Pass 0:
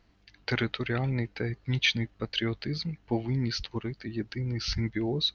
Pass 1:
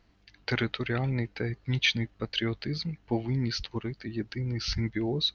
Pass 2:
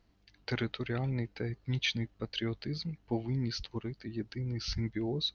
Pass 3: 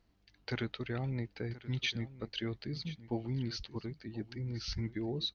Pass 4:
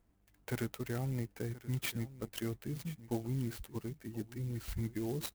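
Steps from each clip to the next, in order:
nothing audible
bell 1900 Hz -4 dB 1.8 oct; gain -4 dB
echo 1.03 s -16.5 dB; gain -3 dB
air absorption 200 m; clock jitter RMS 0.058 ms

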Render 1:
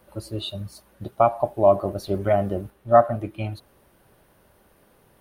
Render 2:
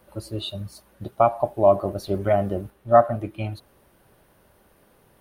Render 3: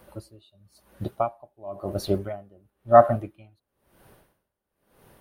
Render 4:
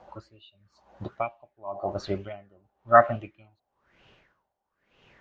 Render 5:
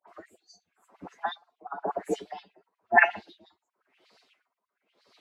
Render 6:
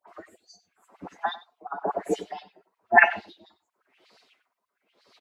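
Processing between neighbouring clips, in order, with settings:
nothing audible
dB-linear tremolo 0.98 Hz, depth 31 dB; gain +3.5 dB
steep low-pass 7300 Hz 72 dB/oct; LFO bell 1.1 Hz 740–2900 Hz +18 dB; gain -6 dB
inharmonic rescaling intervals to 119%; dispersion highs, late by 82 ms, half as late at 1600 Hz; LFO high-pass sine 8.4 Hz 240–3100 Hz
echo 95 ms -17 dB; gain +3 dB

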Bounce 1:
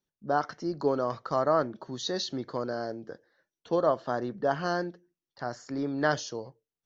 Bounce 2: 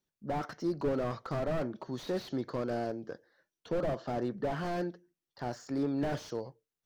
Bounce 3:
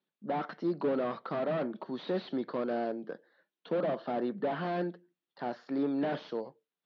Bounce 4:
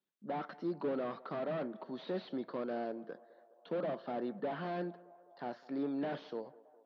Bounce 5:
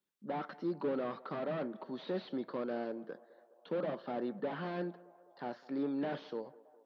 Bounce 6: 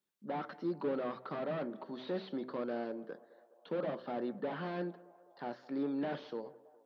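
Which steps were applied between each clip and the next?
slew limiter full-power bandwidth 18 Hz
elliptic band-pass 180–3800 Hz, stop band 40 dB; gain +2 dB
narrowing echo 0.206 s, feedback 75%, band-pass 710 Hz, level -20 dB; gain -5.5 dB
notch 680 Hz, Q 12; gain +1 dB
de-hum 63.94 Hz, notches 9

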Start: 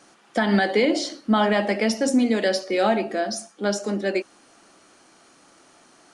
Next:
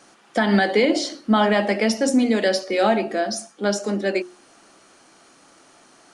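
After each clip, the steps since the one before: notches 60/120/180/240/300/360 Hz; gain +2 dB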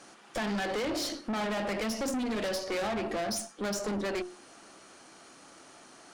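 compressor 4:1, threshold -21 dBFS, peak gain reduction 7.5 dB; tube stage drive 31 dB, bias 0.55; gain +1.5 dB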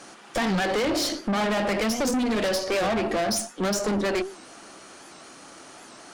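record warp 78 rpm, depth 160 cents; gain +7.5 dB

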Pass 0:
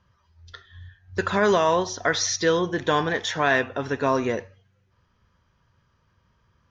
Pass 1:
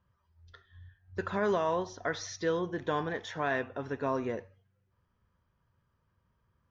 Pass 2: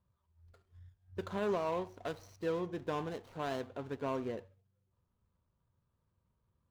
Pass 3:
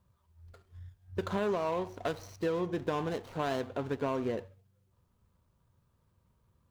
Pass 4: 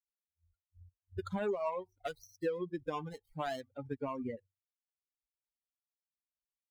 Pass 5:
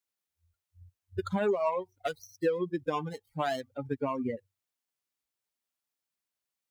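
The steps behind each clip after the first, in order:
high shelf 2400 Hz -10 dB; gain -8.5 dB
median filter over 25 samples; gain -4 dB
compressor, threshold -36 dBFS, peak gain reduction 6.5 dB; gain +8 dB
per-bin expansion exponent 3; gain +1 dB
HPF 88 Hz; gain +6.5 dB

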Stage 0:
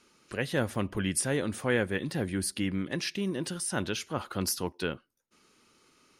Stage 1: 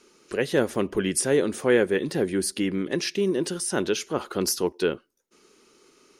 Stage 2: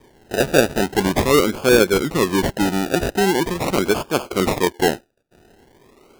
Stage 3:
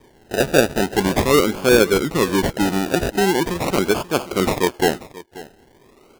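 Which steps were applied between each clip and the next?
fifteen-band EQ 100 Hz -10 dB, 400 Hz +10 dB, 6300 Hz +4 dB; gain +3 dB
decimation with a swept rate 32×, swing 60% 0.43 Hz; gain +6.5 dB
echo 0.535 s -18.5 dB

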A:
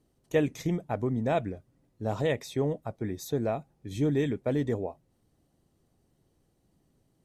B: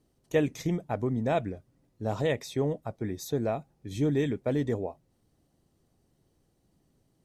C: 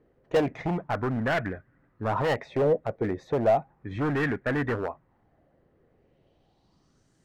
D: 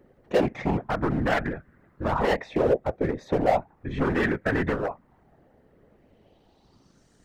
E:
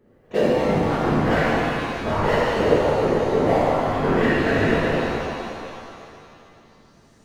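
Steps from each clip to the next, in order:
bell 5200 Hz +2 dB
low-pass sweep 1800 Hz -> 7200 Hz, 5.85–7.12; hard clip -27 dBFS, distortion -8 dB; LFO bell 0.34 Hz 470–1700 Hz +11 dB; gain +2.5 dB
in parallel at +0.5 dB: compressor, threshold -36 dBFS, peak gain reduction 17 dB; on the sum: hard clip -16.5 dBFS, distortion -21 dB; whisperiser
shimmer reverb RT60 2.6 s, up +7 st, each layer -8 dB, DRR -9 dB; gain -4.5 dB

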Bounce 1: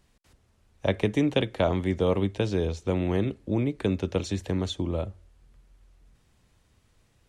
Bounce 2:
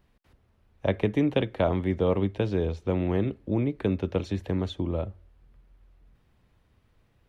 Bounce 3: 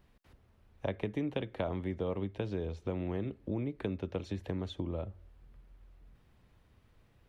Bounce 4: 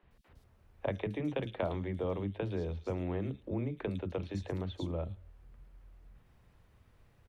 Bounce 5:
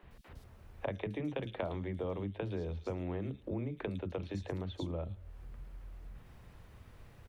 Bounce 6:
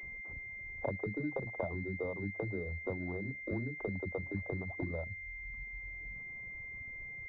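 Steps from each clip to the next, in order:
bell 7600 Hz -14.5 dB 1.5 oct
compressor 2.5:1, threshold -36 dBFS, peak gain reduction 12 dB
three bands offset in time mids, lows, highs 30/110 ms, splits 270/3600 Hz; gain +1.5 dB
compressor 2:1, threshold -52 dBFS, peak gain reduction 13 dB; gain +8.5 dB
reverb removal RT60 1.4 s; pulse-width modulation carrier 2100 Hz; gain +1.5 dB

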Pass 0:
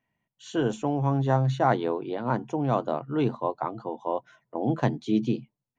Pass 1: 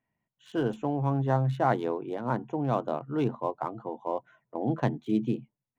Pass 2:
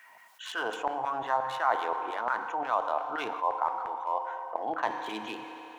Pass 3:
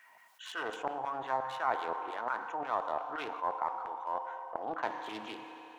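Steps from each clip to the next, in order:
Wiener smoothing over 9 samples; gain -2.5 dB
LFO high-pass saw down 5.7 Hz 740–1600 Hz; on a send at -11 dB: reverb RT60 1.9 s, pre-delay 3 ms; on the sum: fast leveller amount 50%; gain -4 dB
Doppler distortion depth 0.21 ms; gain -5 dB

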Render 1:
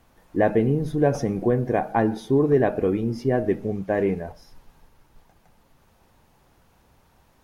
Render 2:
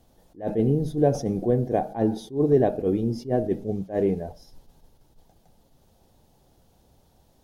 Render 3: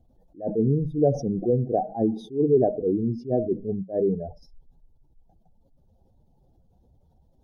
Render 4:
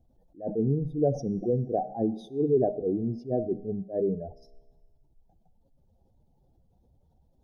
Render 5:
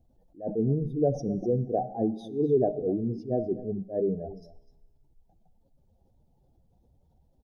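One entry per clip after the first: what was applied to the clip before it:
band shelf 1600 Hz -10.5 dB; attack slew limiter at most 220 dB/s
spectral contrast raised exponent 1.8
resonator 68 Hz, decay 1.4 s, harmonics all, mix 40%
echo 0.251 s -16 dB

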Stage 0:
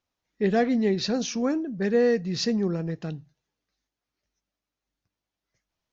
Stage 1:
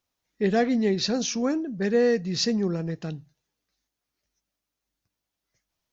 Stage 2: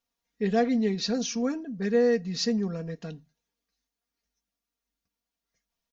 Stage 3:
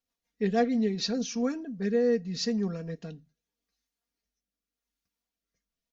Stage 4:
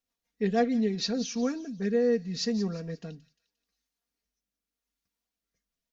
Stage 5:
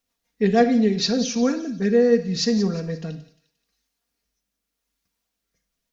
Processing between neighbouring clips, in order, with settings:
high shelf 5800 Hz +8 dB
comb 4.3 ms, depth 77%; gain -6 dB
rotary speaker horn 6.3 Hz, later 0.85 Hz, at 0.5
thin delay 0.176 s, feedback 39%, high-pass 3000 Hz, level -12.5 dB
reverb RT60 0.55 s, pre-delay 34 ms, DRR 10.5 dB; gain +8 dB

